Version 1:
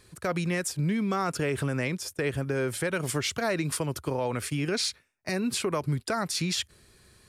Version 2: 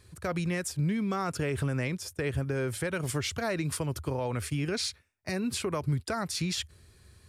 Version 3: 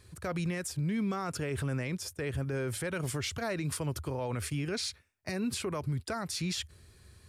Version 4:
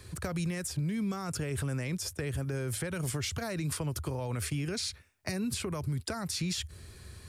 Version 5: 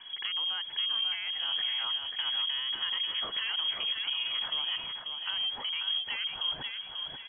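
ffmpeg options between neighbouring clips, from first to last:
-af "equalizer=f=82:w=1.6:g=13.5,volume=0.668"
-af "alimiter=level_in=1.19:limit=0.0631:level=0:latency=1:release=60,volume=0.841"
-filter_complex "[0:a]acrossover=split=160|5500[s0][s1][s2];[s0]acompressor=threshold=0.00631:ratio=4[s3];[s1]acompressor=threshold=0.00562:ratio=4[s4];[s2]acompressor=threshold=0.00501:ratio=4[s5];[s3][s4][s5]amix=inputs=3:normalize=0,volume=2.51"
-filter_complex "[0:a]asoftclip=type=tanh:threshold=0.0299,asplit=2[s0][s1];[s1]aecho=0:1:539|1078|1617|2156:0.531|0.181|0.0614|0.0209[s2];[s0][s2]amix=inputs=2:normalize=0,lowpass=f=2900:t=q:w=0.5098,lowpass=f=2900:t=q:w=0.6013,lowpass=f=2900:t=q:w=0.9,lowpass=f=2900:t=q:w=2.563,afreqshift=-3400,volume=1.41"

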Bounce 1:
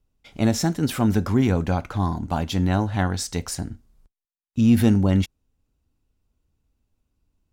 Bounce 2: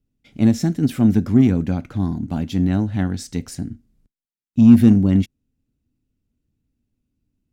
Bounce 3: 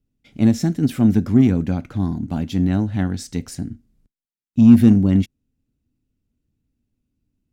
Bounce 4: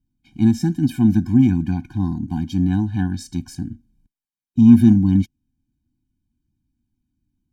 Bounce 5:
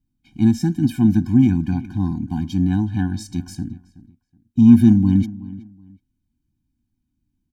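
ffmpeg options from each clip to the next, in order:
-af "equalizer=f=125:t=o:w=1:g=7,equalizer=f=250:t=o:w=1:g=11,equalizer=f=1000:t=o:w=1:g=-7,equalizer=f=2000:t=o:w=1:g=3,aeval=exprs='1.5*(cos(1*acos(clip(val(0)/1.5,-1,1)))-cos(1*PI/2))+0.0299*(cos(7*acos(clip(val(0)/1.5,-1,1)))-cos(7*PI/2))':c=same,volume=0.596"
-af anull
-af "afftfilt=real='re*eq(mod(floor(b*sr/1024/360),2),0)':imag='im*eq(mod(floor(b*sr/1024/360),2),0)':win_size=1024:overlap=0.75"
-filter_complex "[0:a]asplit=2[s0][s1];[s1]adelay=373,lowpass=f=2700:p=1,volume=0.126,asplit=2[s2][s3];[s3]adelay=373,lowpass=f=2700:p=1,volume=0.25[s4];[s0][s2][s4]amix=inputs=3:normalize=0"

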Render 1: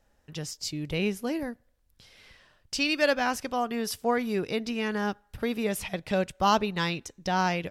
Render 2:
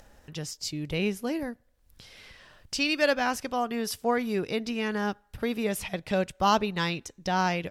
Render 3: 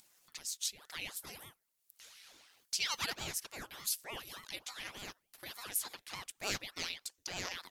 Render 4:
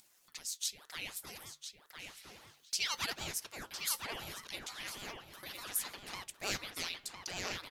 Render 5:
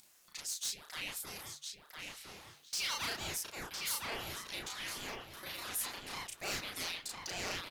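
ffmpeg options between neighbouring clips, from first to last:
-af "acompressor=mode=upward:threshold=0.00708:ratio=2.5"
-af "aderivative,aeval=exprs='val(0)*sin(2*PI*870*n/s+870*0.9/3.4*sin(2*PI*3.4*n/s))':c=same,volume=1.41"
-filter_complex "[0:a]flanger=delay=2.8:depth=7.6:regen=-83:speed=0.34:shape=sinusoidal,asplit=2[s0][s1];[s1]adelay=1007,lowpass=f=2900:p=1,volume=0.631,asplit=2[s2][s3];[s3]adelay=1007,lowpass=f=2900:p=1,volume=0.3,asplit=2[s4][s5];[s5]adelay=1007,lowpass=f=2900:p=1,volume=0.3,asplit=2[s6][s7];[s7]adelay=1007,lowpass=f=2900:p=1,volume=0.3[s8];[s2][s4][s6][s8]amix=inputs=4:normalize=0[s9];[s0][s9]amix=inputs=2:normalize=0,volume=1.68"
-filter_complex "[0:a]asplit=2[s0][s1];[s1]adelay=34,volume=0.794[s2];[s0][s2]amix=inputs=2:normalize=0,asoftclip=type=tanh:threshold=0.0251,volume=1.12"

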